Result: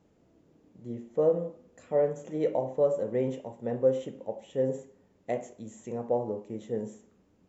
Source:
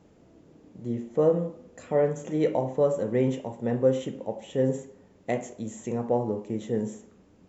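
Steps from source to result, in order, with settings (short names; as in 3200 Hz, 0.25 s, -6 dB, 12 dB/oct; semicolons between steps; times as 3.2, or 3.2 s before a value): dynamic EQ 570 Hz, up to +7 dB, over -37 dBFS, Q 1.3; gain -8 dB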